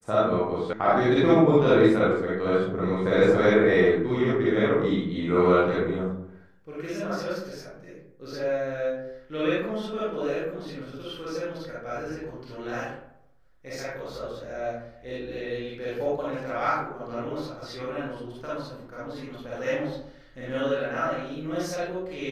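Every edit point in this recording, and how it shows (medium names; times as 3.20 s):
0.73 s: sound stops dead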